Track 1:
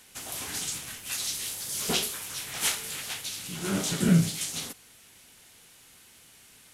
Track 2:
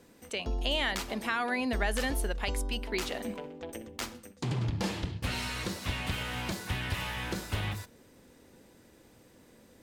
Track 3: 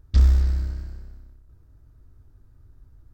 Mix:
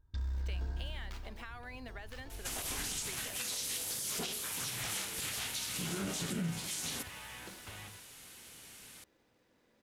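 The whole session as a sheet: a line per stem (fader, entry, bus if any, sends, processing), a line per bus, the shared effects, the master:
+1.5 dB, 2.30 s, no send, downward compressor 4 to 1, threshold −35 dBFS, peak gain reduction 16 dB
−8.5 dB, 0.15 s, no send, running median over 5 samples; low-shelf EQ 440 Hz −8.5 dB; downward compressor 6 to 1, threshold −36 dBFS, peak gain reduction 9 dB
−15.0 dB, 0.00 s, no send, automatic gain control gain up to 16 dB; brickwall limiter −16 dBFS, peak gain reduction 8.5 dB; hollow resonant body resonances 960/1,600/3,600 Hz, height 14 dB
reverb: not used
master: brickwall limiter −27.5 dBFS, peak gain reduction 7.5 dB

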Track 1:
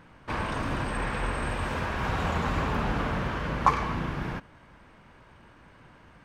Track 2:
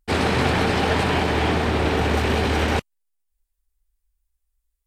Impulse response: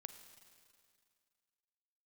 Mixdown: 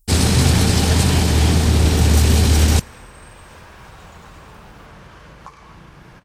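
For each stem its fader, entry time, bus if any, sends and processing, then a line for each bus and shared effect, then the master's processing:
−1.5 dB, 1.80 s, no send, echo send −15.5 dB, parametric band 250 Hz −8 dB 0.25 octaves; downward compressor 3 to 1, threshold −41 dBFS, peak gain reduction 18.5 dB
−5.0 dB, 0.00 s, send −10 dB, no echo send, bass and treble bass +15 dB, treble +11 dB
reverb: on, RT60 2.2 s, pre-delay 36 ms
echo: single-tap delay 1,174 ms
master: bass and treble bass 0 dB, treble +11 dB

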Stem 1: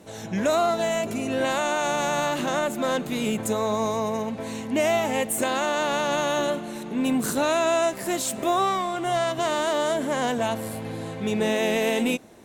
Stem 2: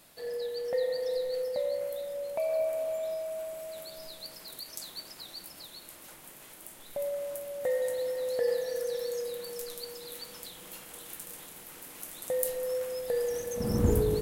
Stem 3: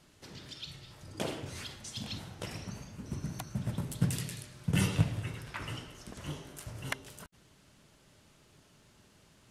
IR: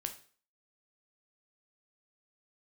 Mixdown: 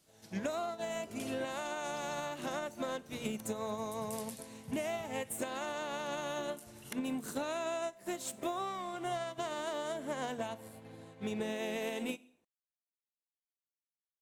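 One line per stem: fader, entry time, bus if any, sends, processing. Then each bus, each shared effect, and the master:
−0.5 dB, 0.00 s, send −10 dB, mains-hum notches 60/120/180/240 Hz; expander for the loud parts 2.5 to 1, over −40 dBFS
muted
−2.0 dB, 0.00 s, no send, first-order pre-emphasis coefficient 0.8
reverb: on, RT60 0.45 s, pre-delay 8 ms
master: downward compressor 10 to 1, threshold −34 dBFS, peak gain reduction 16 dB

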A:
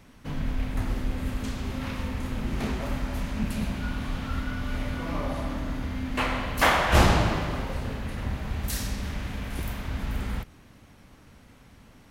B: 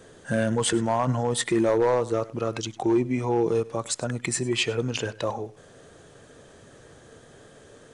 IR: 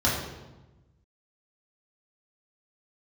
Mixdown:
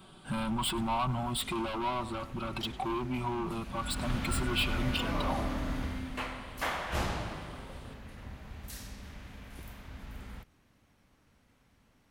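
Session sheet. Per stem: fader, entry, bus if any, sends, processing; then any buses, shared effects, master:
0:03.59 −14 dB → 0:04.09 −1 dB → 0:05.83 −1 dB → 0:06.36 −12.5 dB, 0.00 s, no send, no processing
+1.0 dB, 0.00 s, no send, comb filter 5.3 ms, depth 65%; soft clipping −25 dBFS, distortion −8 dB; phaser with its sweep stopped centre 1,800 Hz, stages 6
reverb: not used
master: low-shelf EQ 390 Hz −2.5 dB

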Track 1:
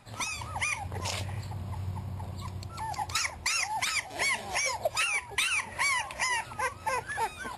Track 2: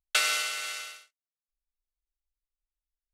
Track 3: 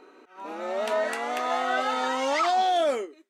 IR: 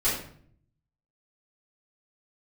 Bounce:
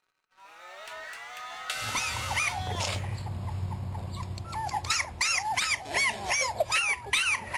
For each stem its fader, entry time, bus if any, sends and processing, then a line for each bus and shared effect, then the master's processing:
+2.5 dB, 1.75 s, no send, low-pass filter 9,700 Hz 12 dB per octave
+2.5 dB, 1.55 s, no send, downward compressor 4 to 1, threshold −37 dBFS, peak gain reduction 14 dB
−16.5 dB, 0.00 s, send −20.5 dB, high-pass filter 1,500 Hz 12 dB per octave; leveller curve on the samples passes 3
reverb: on, RT60 0.55 s, pre-delay 3 ms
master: no processing

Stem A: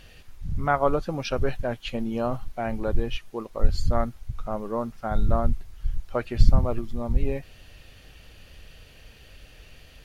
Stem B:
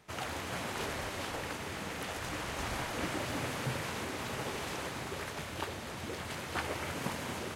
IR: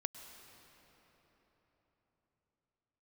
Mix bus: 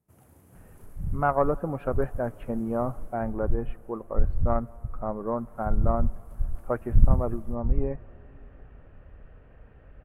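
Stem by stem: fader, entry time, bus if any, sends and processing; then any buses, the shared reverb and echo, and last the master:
−2.0 dB, 0.55 s, send −13 dB, low-pass filter 1,500 Hz 24 dB per octave
0:02.92 −10.5 dB → 0:03.40 −20.5 dB → 0:05.19 −20.5 dB → 0:05.66 −12 dB, 0.00 s, no send, drawn EQ curve 160 Hz 0 dB, 3,900 Hz −26 dB, 6,900 Hz −15 dB, 11,000 Hz +1 dB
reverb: on, RT60 4.3 s, pre-delay 96 ms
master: harmonic generator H 2 −15 dB, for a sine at −3 dBFS

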